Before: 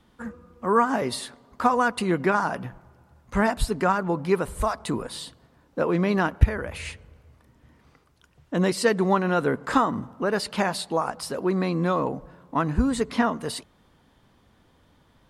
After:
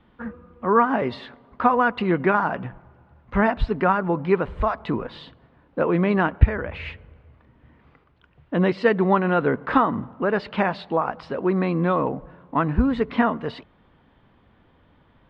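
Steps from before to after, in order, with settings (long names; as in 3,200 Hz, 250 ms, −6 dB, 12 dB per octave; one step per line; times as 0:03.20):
low-pass filter 3,100 Hz 24 dB per octave
level +2.5 dB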